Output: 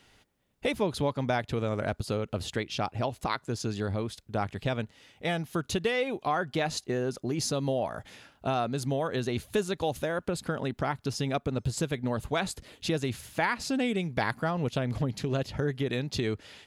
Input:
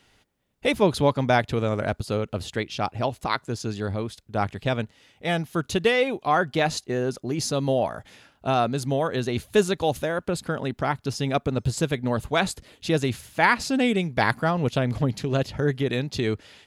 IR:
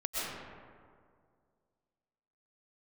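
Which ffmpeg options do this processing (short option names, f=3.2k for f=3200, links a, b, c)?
-af "acompressor=threshold=-28dB:ratio=2.5"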